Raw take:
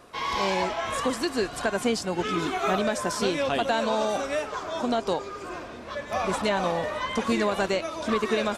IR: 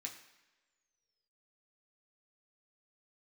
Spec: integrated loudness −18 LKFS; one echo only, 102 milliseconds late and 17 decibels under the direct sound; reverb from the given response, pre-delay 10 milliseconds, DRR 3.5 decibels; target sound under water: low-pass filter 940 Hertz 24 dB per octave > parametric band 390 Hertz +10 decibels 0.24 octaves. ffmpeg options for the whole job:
-filter_complex "[0:a]aecho=1:1:102:0.141,asplit=2[link_01][link_02];[1:a]atrim=start_sample=2205,adelay=10[link_03];[link_02][link_03]afir=irnorm=-1:irlink=0,volume=-0.5dB[link_04];[link_01][link_04]amix=inputs=2:normalize=0,lowpass=frequency=940:width=0.5412,lowpass=frequency=940:width=1.3066,equalizer=frequency=390:width_type=o:width=0.24:gain=10,volume=7dB"

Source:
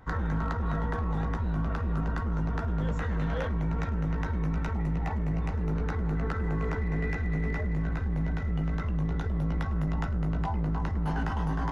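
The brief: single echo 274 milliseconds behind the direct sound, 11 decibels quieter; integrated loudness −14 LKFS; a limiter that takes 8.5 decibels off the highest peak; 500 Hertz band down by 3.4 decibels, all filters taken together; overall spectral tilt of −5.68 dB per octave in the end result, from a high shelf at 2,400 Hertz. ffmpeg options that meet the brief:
ffmpeg -i in.wav -af "equalizer=frequency=500:width_type=o:gain=-4.5,highshelf=frequency=2400:gain=7,alimiter=level_in=3.5dB:limit=-24dB:level=0:latency=1,volume=-3.5dB,aecho=1:1:274:0.282,volume=21.5dB" out.wav

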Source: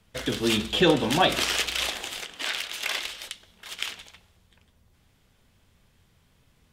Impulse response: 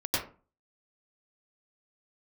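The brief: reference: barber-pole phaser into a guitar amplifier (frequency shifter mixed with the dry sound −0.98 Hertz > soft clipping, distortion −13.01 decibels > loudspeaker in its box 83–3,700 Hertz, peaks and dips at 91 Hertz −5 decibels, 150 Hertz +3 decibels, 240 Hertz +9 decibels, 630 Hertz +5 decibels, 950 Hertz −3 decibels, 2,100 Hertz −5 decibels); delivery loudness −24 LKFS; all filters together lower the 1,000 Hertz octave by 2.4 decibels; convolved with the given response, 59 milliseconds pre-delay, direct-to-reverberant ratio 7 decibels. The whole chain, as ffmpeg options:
-filter_complex "[0:a]equalizer=frequency=1000:width_type=o:gain=-4.5,asplit=2[link_01][link_02];[1:a]atrim=start_sample=2205,adelay=59[link_03];[link_02][link_03]afir=irnorm=-1:irlink=0,volume=-15.5dB[link_04];[link_01][link_04]amix=inputs=2:normalize=0,asplit=2[link_05][link_06];[link_06]afreqshift=-0.98[link_07];[link_05][link_07]amix=inputs=2:normalize=1,asoftclip=threshold=-20dB,highpass=83,equalizer=frequency=91:width_type=q:width=4:gain=-5,equalizer=frequency=150:width_type=q:width=4:gain=3,equalizer=frequency=240:width_type=q:width=4:gain=9,equalizer=frequency=630:width_type=q:width=4:gain=5,equalizer=frequency=950:width_type=q:width=4:gain=-3,equalizer=frequency=2100:width_type=q:width=4:gain=-5,lowpass=frequency=3700:width=0.5412,lowpass=frequency=3700:width=1.3066,volume=5.5dB"

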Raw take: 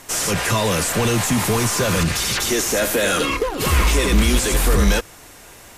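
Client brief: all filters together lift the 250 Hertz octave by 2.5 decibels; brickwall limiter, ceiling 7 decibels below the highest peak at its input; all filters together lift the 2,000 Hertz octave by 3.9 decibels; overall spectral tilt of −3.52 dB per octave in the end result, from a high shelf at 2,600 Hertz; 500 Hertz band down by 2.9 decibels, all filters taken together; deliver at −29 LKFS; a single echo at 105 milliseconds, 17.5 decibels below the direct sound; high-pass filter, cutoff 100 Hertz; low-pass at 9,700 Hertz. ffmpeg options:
ffmpeg -i in.wav -af "highpass=100,lowpass=9700,equalizer=frequency=250:width_type=o:gain=4.5,equalizer=frequency=500:width_type=o:gain=-5,equalizer=frequency=2000:width_type=o:gain=7,highshelf=frequency=2600:gain=-4,alimiter=limit=-12dB:level=0:latency=1,aecho=1:1:105:0.133,volume=-8.5dB" out.wav

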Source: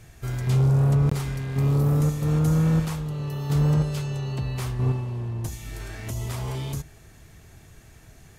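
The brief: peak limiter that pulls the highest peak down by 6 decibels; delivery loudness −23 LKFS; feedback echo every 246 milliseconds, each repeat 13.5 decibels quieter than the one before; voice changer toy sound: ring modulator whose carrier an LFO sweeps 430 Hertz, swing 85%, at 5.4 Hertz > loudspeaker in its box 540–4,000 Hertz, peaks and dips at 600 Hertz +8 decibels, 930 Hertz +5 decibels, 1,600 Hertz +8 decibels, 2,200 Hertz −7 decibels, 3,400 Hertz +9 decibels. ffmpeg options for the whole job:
ffmpeg -i in.wav -af "alimiter=limit=-18.5dB:level=0:latency=1,aecho=1:1:246|492:0.211|0.0444,aeval=exprs='val(0)*sin(2*PI*430*n/s+430*0.85/5.4*sin(2*PI*5.4*n/s))':channel_layout=same,highpass=540,equalizer=frequency=600:width_type=q:width=4:gain=8,equalizer=frequency=930:width_type=q:width=4:gain=5,equalizer=frequency=1600:width_type=q:width=4:gain=8,equalizer=frequency=2200:width_type=q:width=4:gain=-7,equalizer=frequency=3400:width_type=q:width=4:gain=9,lowpass=frequency=4000:width=0.5412,lowpass=frequency=4000:width=1.3066,volume=5dB" out.wav

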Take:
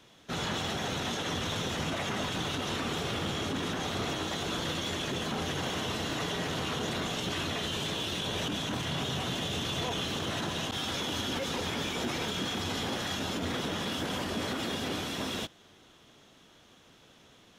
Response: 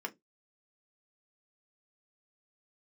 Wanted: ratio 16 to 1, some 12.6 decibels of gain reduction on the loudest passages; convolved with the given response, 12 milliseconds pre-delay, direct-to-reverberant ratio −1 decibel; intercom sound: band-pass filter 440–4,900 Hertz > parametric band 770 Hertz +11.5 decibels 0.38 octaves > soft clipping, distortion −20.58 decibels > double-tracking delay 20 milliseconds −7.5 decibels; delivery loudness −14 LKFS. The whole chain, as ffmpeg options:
-filter_complex "[0:a]acompressor=threshold=-42dB:ratio=16,asplit=2[link_01][link_02];[1:a]atrim=start_sample=2205,adelay=12[link_03];[link_02][link_03]afir=irnorm=-1:irlink=0,volume=-0.5dB[link_04];[link_01][link_04]amix=inputs=2:normalize=0,highpass=440,lowpass=4900,equalizer=frequency=770:width_type=o:width=0.38:gain=11.5,asoftclip=threshold=-34dB,asplit=2[link_05][link_06];[link_06]adelay=20,volume=-7.5dB[link_07];[link_05][link_07]amix=inputs=2:normalize=0,volume=28dB"

